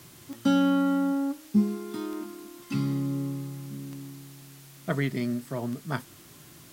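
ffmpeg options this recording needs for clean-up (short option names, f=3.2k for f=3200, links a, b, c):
-af "adeclick=t=4,afwtdn=0.0025"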